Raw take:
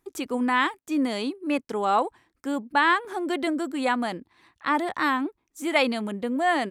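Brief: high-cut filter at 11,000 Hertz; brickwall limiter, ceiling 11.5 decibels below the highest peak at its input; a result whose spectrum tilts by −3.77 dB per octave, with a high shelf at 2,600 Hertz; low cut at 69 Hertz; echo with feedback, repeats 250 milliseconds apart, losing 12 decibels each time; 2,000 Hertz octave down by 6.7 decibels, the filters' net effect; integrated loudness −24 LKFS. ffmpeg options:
ffmpeg -i in.wav -af "highpass=69,lowpass=11000,equalizer=frequency=2000:width_type=o:gain=-6,highshelf=frequency=2600:gain=-5.5,alimiter=limit=-23dB:level=0:latency=1,aecho=1:1:250|500|750:0.251|0.0628|0.0157,volume=7.5dB" out.wav

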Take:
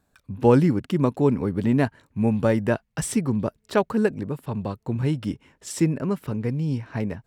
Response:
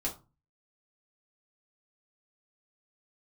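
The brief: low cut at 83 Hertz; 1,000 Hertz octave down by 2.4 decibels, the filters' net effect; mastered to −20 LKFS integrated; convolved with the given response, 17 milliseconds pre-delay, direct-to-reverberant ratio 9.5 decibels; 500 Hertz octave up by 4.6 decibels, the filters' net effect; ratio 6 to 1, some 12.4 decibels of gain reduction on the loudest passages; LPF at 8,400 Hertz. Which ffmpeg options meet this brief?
-filter_complex "[0:a]highpass=83,lowpass=8400,equalizer=frequency=500:width_type=o:gain=6.5,equalizer=frequency=1000:width_type=o:gain=-5.5,acompressor=threshold=-21dB:ratio=6,asplit=2[link_01][link_02];[1:a]atrim=start_sample=2205,adelay=17[link_03];[link_02][link_03]afir=irnorm=-1:irlink=0,volume=-13dB[link_04];[link_01][link_04]amix=inputs=2:normalize=0,volume=7dB"

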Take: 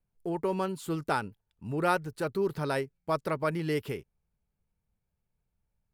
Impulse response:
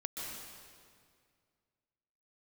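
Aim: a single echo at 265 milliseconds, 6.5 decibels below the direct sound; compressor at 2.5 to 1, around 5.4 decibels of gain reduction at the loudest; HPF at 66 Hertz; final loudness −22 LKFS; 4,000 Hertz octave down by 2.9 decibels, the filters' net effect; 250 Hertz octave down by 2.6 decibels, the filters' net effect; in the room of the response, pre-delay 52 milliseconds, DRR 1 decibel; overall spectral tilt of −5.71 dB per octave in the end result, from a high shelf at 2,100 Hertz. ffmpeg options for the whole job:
-filter_complex "[0:a]highpass=66,equalizer=frequency=250:width_type=o:gain=-4.5,highshelf=frequency=2100:gain=3.5,equalizer=frequency=4000:width_type=o:gain=-7.5,acompressor=threshold=-31dB:ratio=2.5,aecho=1:1:265:0.473,asplit=2[link_01][link_02];[1:a]atrim=start_sample=2205,adelay=52[link_03];[link_02][link_03]afir=irnorm=-1:irlink=0,volume=-2dB[link_04];[link_01][link_04]amix=inputs=2:normalize=0,volume=11dB"

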